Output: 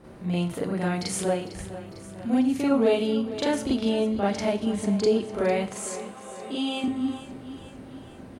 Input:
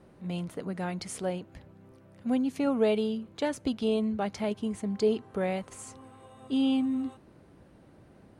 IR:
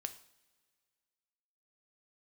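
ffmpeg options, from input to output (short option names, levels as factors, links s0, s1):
-filter_complex "[0:a]asettb=1/sr,asplit=3[s0][s1][s2];[s0]atrim=end=5.704[s3];[s1]atrim=start=5.7:end=6.84,asetpts=PTS-STARTPTS,afade=t=in:d=0.004:c=qsin,afade=t=out:st=1.136:d=0.004:c=qsin,highpass=360[s4];[s2]atrim=start=6.836[s5];[s3][s4]acrossfade=d=0.004:c1=hsin:c2=qsin[s6];[s6][s5]acrossfade=d=0.004:c1=qsin:c2=hsin,acompressor=threshold=0.01:ratio=1.5,aecho=1:1:452|904|1356|1808|2260|2712:0.188|0.107|0.0612|0.0349|0.0199|0.0113,asplit=2[s7][s8];[1:a]atrim=start_sample=2205,adelay=40[s9];[s8][s9]afir=irnorm=-1:irlink=0,volume=2.37[s10];[s7][s10]amix=inputs=2:normalize=0,volume=1.68"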